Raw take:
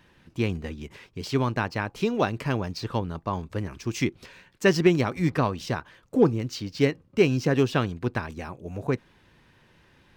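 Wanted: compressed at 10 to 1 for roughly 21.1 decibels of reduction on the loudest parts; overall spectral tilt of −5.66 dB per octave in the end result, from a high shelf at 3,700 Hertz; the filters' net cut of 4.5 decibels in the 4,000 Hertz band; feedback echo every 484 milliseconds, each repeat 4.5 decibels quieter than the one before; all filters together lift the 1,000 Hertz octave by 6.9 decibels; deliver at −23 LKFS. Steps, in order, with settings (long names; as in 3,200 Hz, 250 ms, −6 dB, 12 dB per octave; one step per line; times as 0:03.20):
parametric band 1,000 Hz +9 dB
high-shelf EQ 3,700 Hz −4.5 dB
parametric band 4,000 Hz −4 dB
downward compressor 10 to 1, threshold −35 dBFS
repeating echo 484 ms, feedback 60%, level −4.5 dB
level +16.5 dB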